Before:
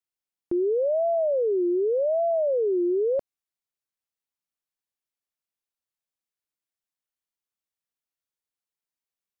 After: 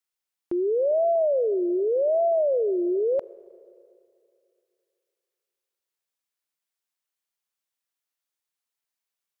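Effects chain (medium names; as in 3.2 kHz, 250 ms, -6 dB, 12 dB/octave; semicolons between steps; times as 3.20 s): bass shelf 360 Hz -11 dB; Schroeder reverb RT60 2.6 s, combs from 30 ms, DRR 19.5 dB; trim +4.5 dB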